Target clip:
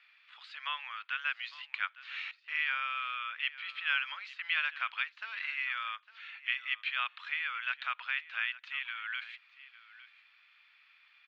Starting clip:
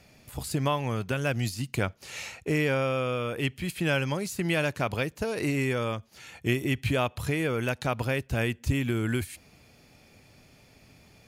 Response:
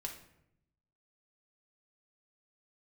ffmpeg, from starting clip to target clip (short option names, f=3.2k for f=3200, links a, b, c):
-filter_complex "[0:a]asettb=1/sr,asplit=3[a][b][c];[a]atrim=end=2.314[d];[b]atrim=start=2.31:end=3.5,asetpts=PTS-STARTPTS,afade=t=in:d=0.004:c=qsin,afade=t=out:st=1.186:d=0.004:c=qsin,agate=range=-20dB:threshold=-34dB:ratio=16:detection=peak[e];[c]atrim=start=3.496[f];[d][e]acrossfade=d=0.004:c1=hsin:c2=qsin[g];[g][f]acrossfade=d=0.004:c1=qsin:c2=hsin,asuperpass=centerf=2100:order=8:qfactor=0.84,aecho=1:1:856:0.133"